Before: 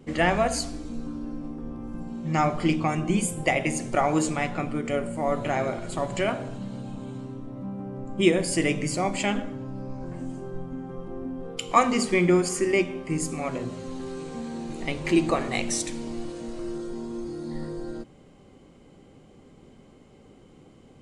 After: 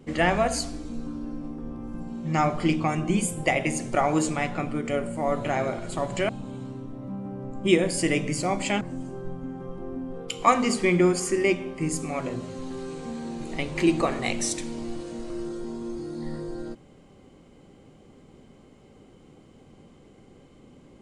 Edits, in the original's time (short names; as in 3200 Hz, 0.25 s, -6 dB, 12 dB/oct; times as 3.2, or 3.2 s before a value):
6.29–6.83 cut
9.35–10.1 cut